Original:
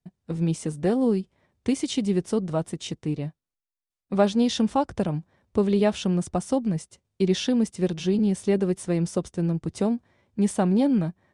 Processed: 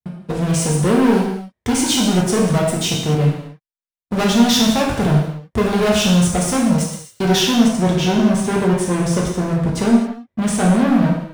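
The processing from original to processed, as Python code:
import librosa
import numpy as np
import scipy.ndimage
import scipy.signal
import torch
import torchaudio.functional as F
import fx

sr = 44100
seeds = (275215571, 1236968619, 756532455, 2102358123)

y = fx.leveller(x, sr, passes=5)
y = fx.high_shelf(y, sr, hz=4900.0, db=fx.steps((0.0, 2.5), (7.39, -5.5)))
y = fx.rev_gated(y, sr, seeds[0], gate_ms=300, shape='falling', drr_db=-3.5)
y = F.gain(torch.from_numpy(y), -6.5).numpy()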